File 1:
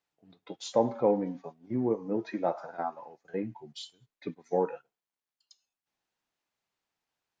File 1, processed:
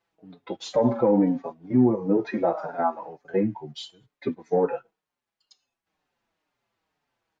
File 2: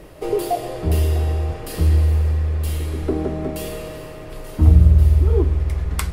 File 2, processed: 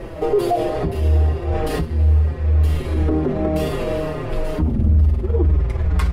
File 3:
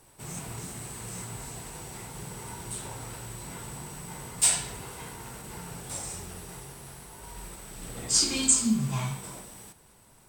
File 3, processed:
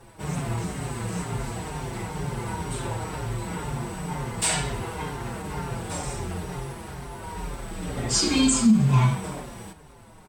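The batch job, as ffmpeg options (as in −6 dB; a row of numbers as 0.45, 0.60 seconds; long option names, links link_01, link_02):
-filter_complex "[0:a]lowpass=frequency=1900:poles=1,aeval=exprs='0.891*sin(PI/2*2*val(0)/0.891)':channel_layout=same,alimiter=level_in=12dB:limit=-1dB:release=50:level=0:latency=1,asplit=2[link_01][link_02];[link_02]adelay=5.4,afreqshift=-2.1[link_03];[link_01][link_03]amix=inputs=2:normalize=1,volume=-8dB"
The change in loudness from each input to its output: +7.0, −0.5, +3.0 LU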